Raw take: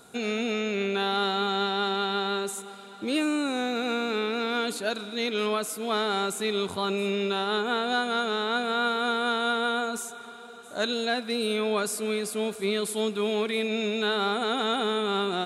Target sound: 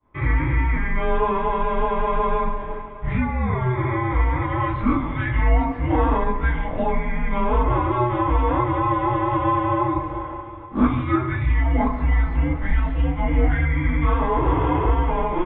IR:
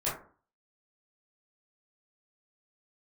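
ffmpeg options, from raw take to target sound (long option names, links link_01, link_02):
-filter_complex "[0:a]agate=range=-33dB:threshold=-39dB:ratio=3:detection=peak,acompressor=threshold=-32dB:ratio=6,aecho=1:1:142:0.2[link_01];[1:a]atrim=start_sample=2205[link_02];[link_01][link_02]afir=irnorm=-1:irlink=0,highpass=frequency=240:width_type=q:width=0.5412,highpass=frequency=240:width_type=q:width=1.307,lowpass=frequency=2500:width_type=q:width=0.5176,lowpass=frequency=2500:width_type=q:width=0.7071,lowpass=frequency=2500:width_type=q:width=1.932,afreqshift=-370,volume=9dB"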